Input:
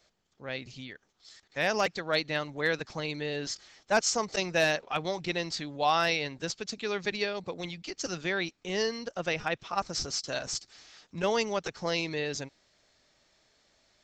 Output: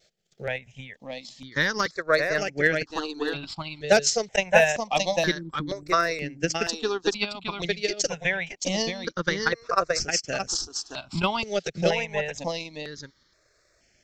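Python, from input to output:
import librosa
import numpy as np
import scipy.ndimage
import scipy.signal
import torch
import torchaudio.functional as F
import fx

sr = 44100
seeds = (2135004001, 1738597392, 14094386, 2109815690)

p1 = fx.vibrato(x, sr, rate_hz=1.4, depth_cents=27.0)
p2 = fx.spec_erase(p1, sr, start_s=5.34, length_s=0.59, low_hz=380.0, high_hz=7400.0)
p3 = fx.transient(p2, sr, attack_db=9, sustain_db=-8)
p4 = p3 + fx.echo_single(p3, sr, ms=621, db=-5.0, dry=0)
p5 = fx.phaser_held(p4, sr, hz=2.1, low_hz=270.0, high_hz=3800.0)
y = p5 * librosa.db_to_amplitude(4.5)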